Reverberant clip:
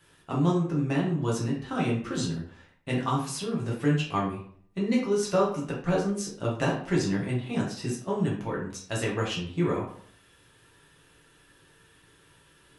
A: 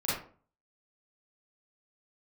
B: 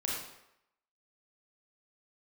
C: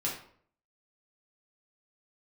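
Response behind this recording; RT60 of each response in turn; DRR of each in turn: C; 0.45, 0.85, 0.55 s; -10.0, -4.0, -5.0 dB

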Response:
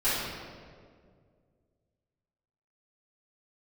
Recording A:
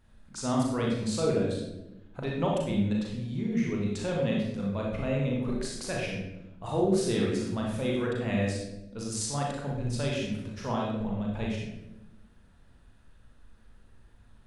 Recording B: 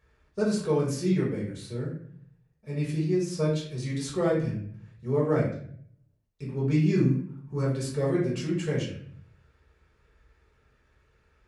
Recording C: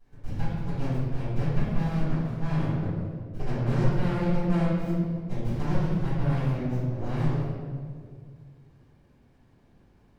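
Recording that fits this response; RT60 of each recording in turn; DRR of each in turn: C; 0.95, 0.60, 2.0 s; -2.5, -5.5, -14.5 dB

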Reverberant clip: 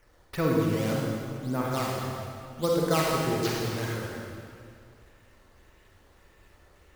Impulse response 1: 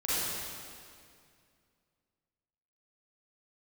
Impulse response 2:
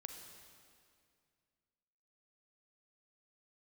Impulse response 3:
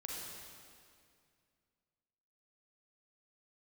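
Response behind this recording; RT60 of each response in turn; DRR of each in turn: 3; 2.2, 2.2, 2.2 s; -11.5, 4.5, -3.0 dB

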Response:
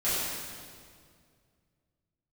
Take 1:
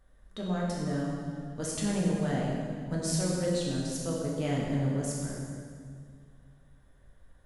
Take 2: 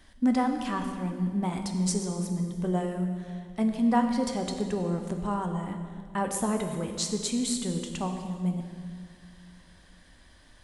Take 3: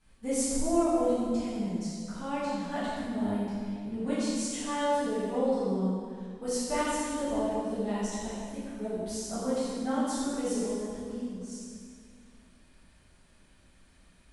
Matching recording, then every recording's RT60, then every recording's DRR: 3; 2.1, 2.1, 2.1 s; -4.5, 4.0, -14.0 dB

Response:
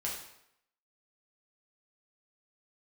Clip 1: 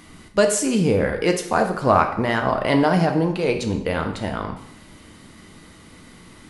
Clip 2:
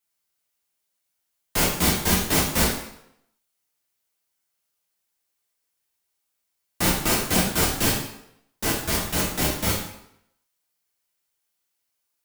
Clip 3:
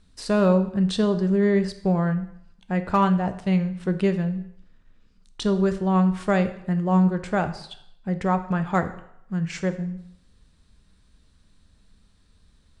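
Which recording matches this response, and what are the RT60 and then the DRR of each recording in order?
2; 0.75, 0.75, 0.75 s; 4.0, -4.5, 8.5 dB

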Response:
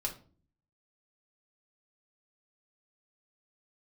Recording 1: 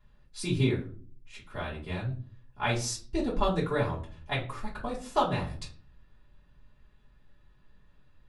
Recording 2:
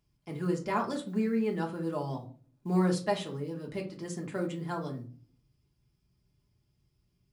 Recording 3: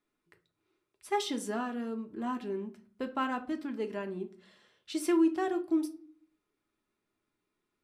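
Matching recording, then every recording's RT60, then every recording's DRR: 2; 0.40, 0.45, 0.45 s; -7.5, -1.0, 4.5 dB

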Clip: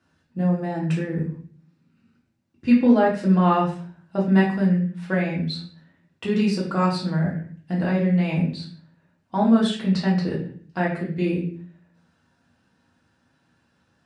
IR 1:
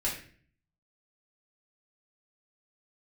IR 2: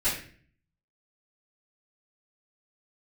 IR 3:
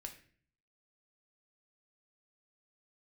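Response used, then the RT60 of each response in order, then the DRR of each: 1; 0.45, 0.45, 0.45 s; -6.0, -15.5, 3.5 dB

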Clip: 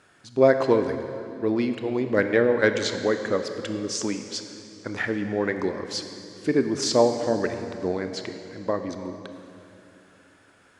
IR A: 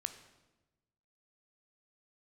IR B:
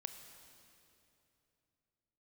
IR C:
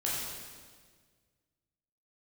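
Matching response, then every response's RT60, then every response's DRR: B; 1.1, 2.9, 1.6 s; 8.5, 7.0, -6.5 dB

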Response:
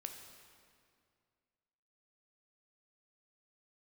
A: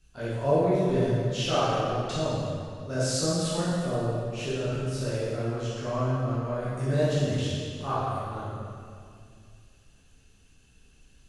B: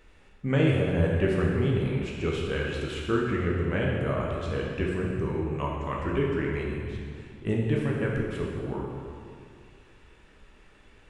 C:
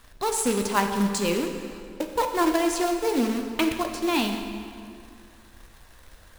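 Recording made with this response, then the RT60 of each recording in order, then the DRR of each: C; 2.2, 2.2, 2.2 s; -11.0, -3.0, 4.0 dB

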